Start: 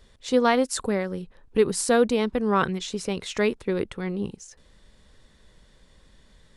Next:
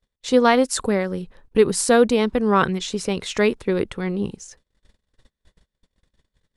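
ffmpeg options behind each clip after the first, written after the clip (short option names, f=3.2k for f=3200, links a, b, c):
-af "agate=range=-33dB:threshold=-50dB:ratio=16:detection=peak,volume=4.5dB"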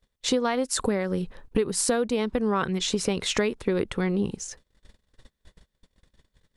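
-af "acompressor=threshold=-25dB:ratio=10,volume=4dB"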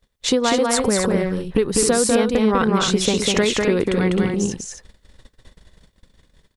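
-af "aecho=1:1:198.3|262.4:0.708|0.447,volume=5.5dB"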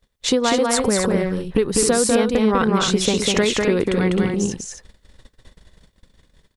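-af anull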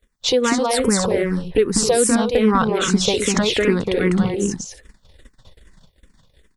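-filter_complex "[0:a]asplit=2[a][b];[b]afreqshift=-2.5[c];[a][c]amix=inputs=2:normalize=1,volume=3.5dB"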